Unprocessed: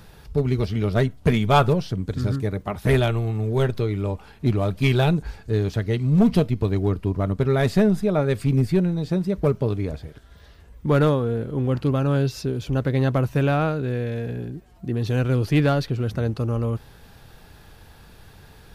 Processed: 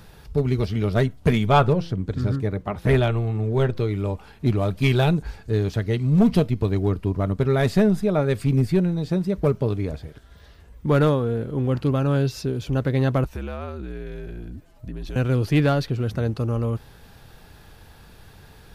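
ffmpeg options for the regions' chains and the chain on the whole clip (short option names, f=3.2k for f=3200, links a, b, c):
-filter_complex "[0:a]asettb=1/sr,asplit=3[a][b][c];[a]atrim=end=1.494[d];[b]atrim=start=1.49:end=3.8,asetpts=PTS-STARTPTS,afade=t=in:d=0.004:c=qsin,afade=t=out:st=2.306:d=0.004:c=qsin,aemphasis=mode=reproduction:type=cd,bandreject=f=169.8:t=h:w=4,bandreject=f=339.6:t=h:w=4,bandreject=f=509.4:t=h:w=4[e];[c]atrim=start=3.796[f];[d][e]acrossfade=d=0.004:c1=hsin:c2=qsin[g];[g][f]acrossfade=d=0.004:c1=qsin:c2=hsin,asettb=1/sr,asplit=3[h][i][j];[h]atrim=end=13.244[k];[i]atrim=start=13.24:end=15.16,asetpts=PTS-STARTPTS,afade=t=in:d=0.004:c=qsin,afade=t=out:st=1.916:d=0.004:c=qsin,afreqshift=-70,acompressor=threshold=-32dB:ratio=2.5:attack=3.2:release=140:knee=1:detection=peak[l];[j]atrim=start=15.156[m];[k][l]acrossfade=d=0.004:c1=hsin:c2=qsin[n];[n][m]acrossfade=d=0.004:c1=qsin:c2=hsin"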